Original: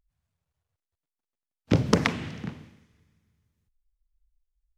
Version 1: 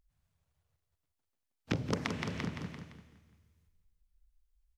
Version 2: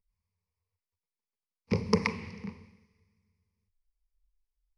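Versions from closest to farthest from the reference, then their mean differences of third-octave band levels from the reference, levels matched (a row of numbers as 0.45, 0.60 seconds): 2, 1; 4.5, 8.0 decibels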